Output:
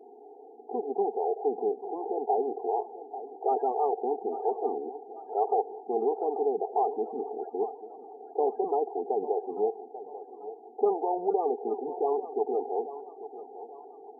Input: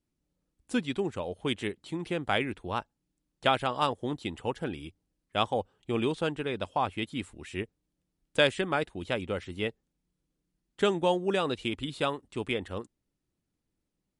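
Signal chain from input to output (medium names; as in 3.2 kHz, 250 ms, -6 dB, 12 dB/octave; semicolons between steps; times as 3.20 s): spectral levelling over time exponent 0.4; two resonant band-passes 570 Hz, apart 0.75 oct; loudest bins only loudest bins 16; thinning echo 840 ms, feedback 59%, high-pass 560 Hz, level -10 dB; trim +3 dB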